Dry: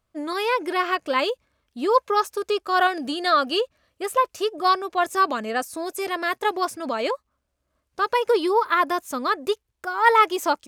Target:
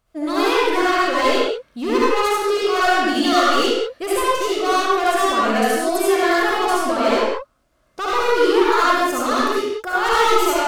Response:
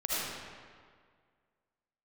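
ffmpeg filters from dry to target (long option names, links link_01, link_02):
-filter_complex "[0:a]asplit=2[link_01][link_02];[link_02]acompressor=threshold=-29dB:ratio=6,volume=0dB[link_03];[link_01][link_03]amix=inputs=2:normalize=0,volume=19.5dB,asoftclip=hard,volume=-19.5dB[link_04];[1:a]atrim=start_sample=2205,afade=type=out:start_time=0.36:duration=0.01,atrim=end_sample=16317,asetrate=48510,aresample=44100[link_05];[link_04][link_05]afir=irnorm=-1:irlink=0"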